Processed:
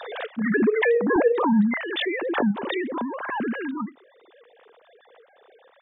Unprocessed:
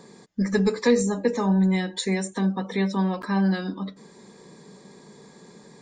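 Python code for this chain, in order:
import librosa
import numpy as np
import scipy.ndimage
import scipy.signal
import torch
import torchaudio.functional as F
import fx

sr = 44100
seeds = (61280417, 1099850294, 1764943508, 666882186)

y = fx.sine_speech(x, sr)
y = fx.highpass(y, sr, hz=fx.steps((0.0, 520.0), (1.16, 150.0)), slope=6)
y = fx.pre_swell(y, sr, db_per_s=34.0)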